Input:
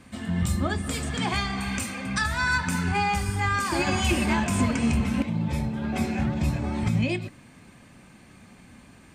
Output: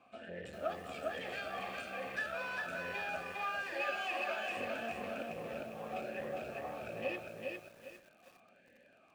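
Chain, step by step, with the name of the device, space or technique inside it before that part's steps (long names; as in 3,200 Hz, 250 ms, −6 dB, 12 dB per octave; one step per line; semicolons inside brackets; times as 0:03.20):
0:03.22–0:04.57: meter weighting curve A
talk box (tube saturation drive 28 dB, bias 0.7; formant filter swept between two vowels a-e 1.2 Hz)
feedback echo at a low word length 403 ms, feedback 35%, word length 11 bits, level −3 dB
level +5.5 dB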